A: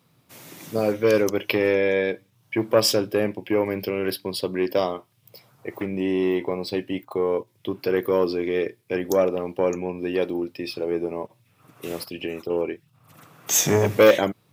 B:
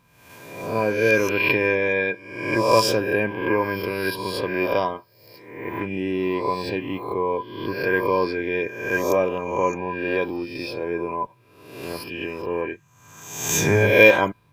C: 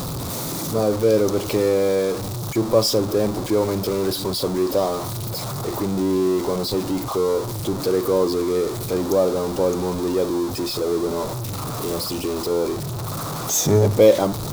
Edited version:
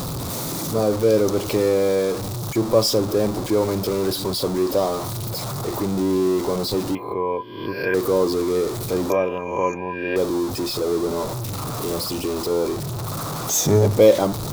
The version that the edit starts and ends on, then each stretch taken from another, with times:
C
6.95–7.94 from B
9.1–10.16 from B
not used: A

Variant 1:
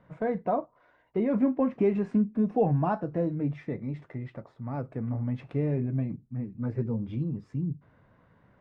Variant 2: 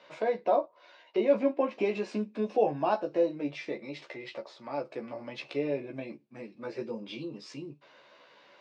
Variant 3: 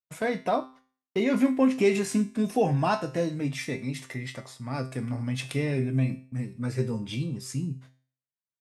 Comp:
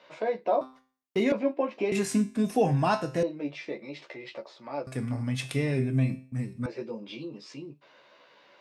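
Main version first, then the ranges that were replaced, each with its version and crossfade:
2
0.61–1.32 from 3
1.92–3.23 from 3
4.87–6.66 from 3
not used: 1

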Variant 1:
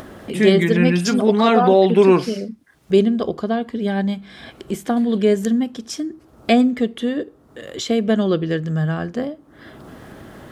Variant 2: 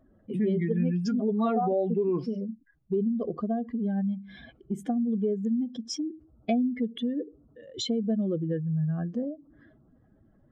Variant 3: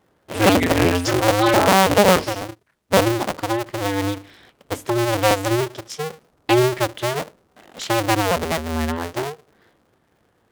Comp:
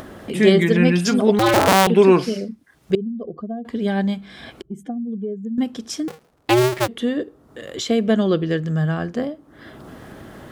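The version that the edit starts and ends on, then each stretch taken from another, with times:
1
1.39–1.87 from 3
2.95–3.65 from 2
4.62–5.58 from 2
6.08–6.88 from 3

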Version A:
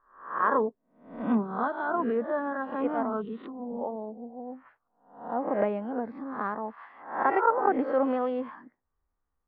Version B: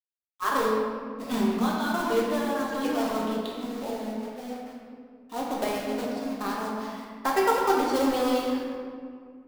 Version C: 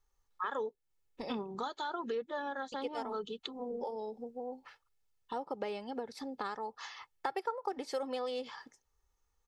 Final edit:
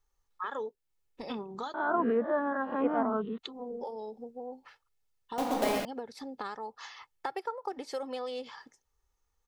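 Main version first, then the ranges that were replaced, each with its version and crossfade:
C
1.74–3.38 from A
5.38–5.85 from B

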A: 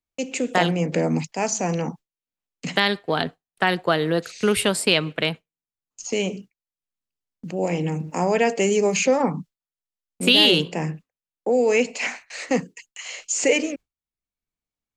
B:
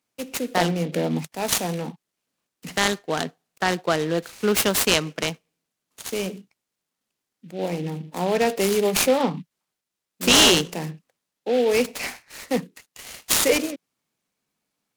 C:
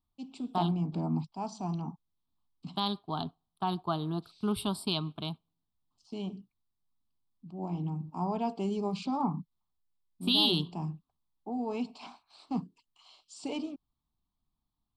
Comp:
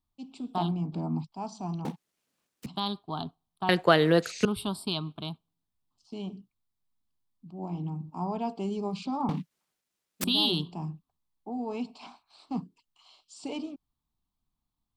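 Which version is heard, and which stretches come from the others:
C
1.85–2.66 from B
3.69–4.45 from A
9.29–10.24 from B

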